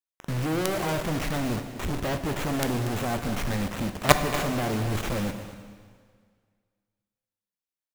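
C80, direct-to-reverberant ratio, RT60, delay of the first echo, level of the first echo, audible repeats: 9.0 dB, 7.0 dB, 1.9 s, 0.236 s, -14.0 dB, 1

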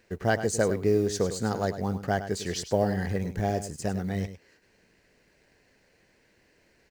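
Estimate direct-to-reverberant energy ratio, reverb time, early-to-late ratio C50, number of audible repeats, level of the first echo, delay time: none, none, none, 1, -11.5 dB, 0.102 s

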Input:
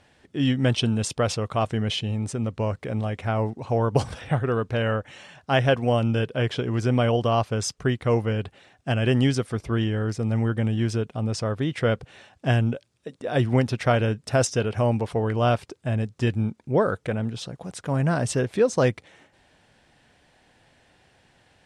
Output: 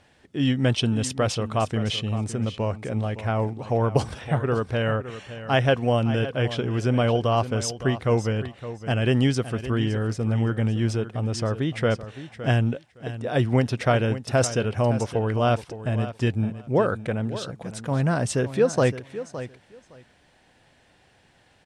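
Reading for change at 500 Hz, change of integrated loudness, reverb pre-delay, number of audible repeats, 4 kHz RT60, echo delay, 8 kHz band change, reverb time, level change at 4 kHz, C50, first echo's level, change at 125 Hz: 0.0 dB, 0.0 dB, none, 2, none, 0.564 s, 0.0 dB, none, 0.0 dB, none, -13.0 dB, 0.0 dB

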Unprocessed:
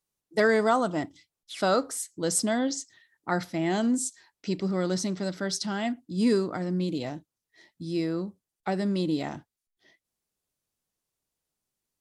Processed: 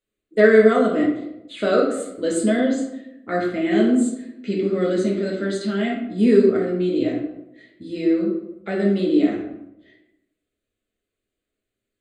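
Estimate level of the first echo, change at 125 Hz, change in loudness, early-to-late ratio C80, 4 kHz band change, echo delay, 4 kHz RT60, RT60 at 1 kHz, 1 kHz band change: none, +3.0 dB, +8.0 dB, 7.0 dB, 0.0 dB, none, 0.50 s, 0.80 s, +1.0 dB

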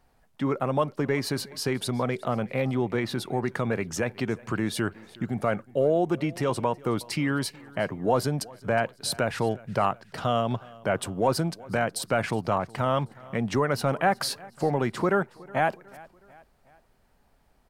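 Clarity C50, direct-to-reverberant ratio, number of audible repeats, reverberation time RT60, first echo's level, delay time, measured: none, none, 3, none, -22.5 dB, 0.367 s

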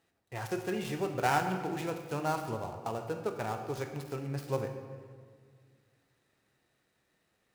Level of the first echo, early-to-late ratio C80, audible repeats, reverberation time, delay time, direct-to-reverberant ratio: none, 8.5 dB, none, 1.9 s, none, 6.5 dB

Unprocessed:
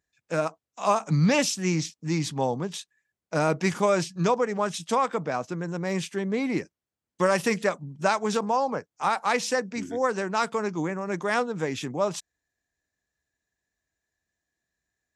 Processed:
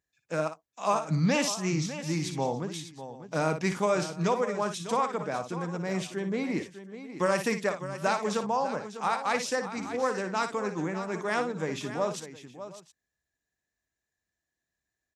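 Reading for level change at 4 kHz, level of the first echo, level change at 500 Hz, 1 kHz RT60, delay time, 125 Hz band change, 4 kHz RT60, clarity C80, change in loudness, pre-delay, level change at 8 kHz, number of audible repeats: -3.0 dB, -9.0 dB, -3.5 dB, none, 58 ms, -3.5 dB, none, none, -3.5 dB, none, -3.0 dB, 3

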